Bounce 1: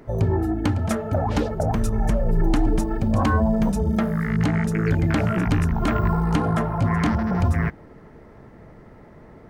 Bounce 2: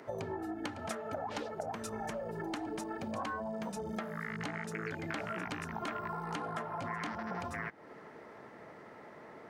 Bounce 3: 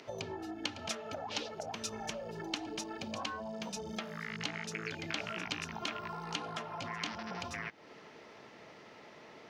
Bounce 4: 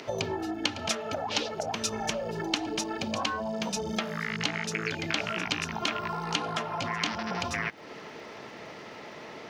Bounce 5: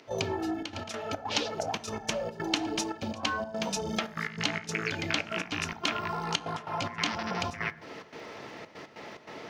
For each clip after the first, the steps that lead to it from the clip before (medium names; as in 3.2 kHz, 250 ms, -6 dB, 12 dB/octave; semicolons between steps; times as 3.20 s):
frequency weighting A; compression 5:1, threshold -37 dBFS, peak gain reduction 14 dB
high-order bell 4 kHz +13 dB; trim -3 dB
in parallel at -0.5 dB: gain riding within 3 dB; on the sum: crackle 76 per s -56 dBFS; trim +3 dB
trance gate ".xxxxx.x.xx" 144 bpm -12 dB; on a send at -13 dB: reverberation RT60 0.70 s, pre-delay 5 ms